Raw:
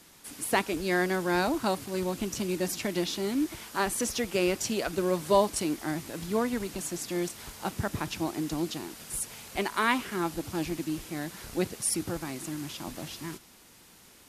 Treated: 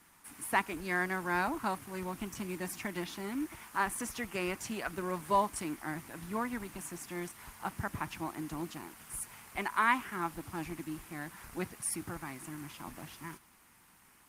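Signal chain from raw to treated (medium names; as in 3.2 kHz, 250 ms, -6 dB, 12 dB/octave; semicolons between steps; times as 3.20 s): graphic EQ 500/1000/2000/4000 Hz -8/+7/+5/-6 dB; trim -6 dB; Opus 32 kbps 48 kHz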